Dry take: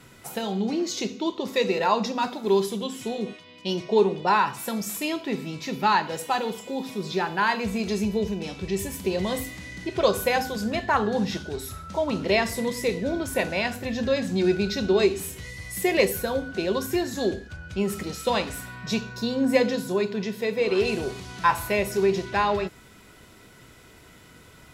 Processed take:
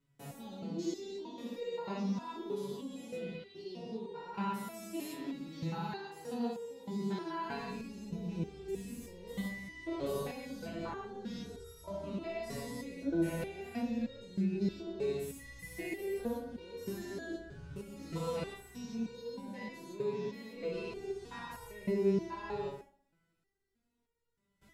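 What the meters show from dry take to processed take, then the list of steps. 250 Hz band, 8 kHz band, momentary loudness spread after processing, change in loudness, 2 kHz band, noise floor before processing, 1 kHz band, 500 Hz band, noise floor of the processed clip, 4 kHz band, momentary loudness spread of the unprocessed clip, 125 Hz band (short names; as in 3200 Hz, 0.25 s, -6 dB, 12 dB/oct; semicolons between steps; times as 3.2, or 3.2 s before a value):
-10.5 dB, -17.5 dB, 10 LU, -14.0 dB, -18.5 dB, -51 dBFS, -18.0 dB, -14.0 dB, -80 dBFS, -18.5 dB, 10 LU, -9.0 dB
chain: stepped spectrum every 0.2 s; gate with hold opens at -40 dBFS; spectral repair 3.09–3.55, 970–4900 Hz before; low shelf 350 Hz +11 dB; limiter -18 dBFS, peak gain reduction 9.5 dB; on a send: dark delay 62 ms, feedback 50%, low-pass 1700 Hz, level -6.5 dB; on the sum: stepped resonator 3.2 Hz 140–470 Hz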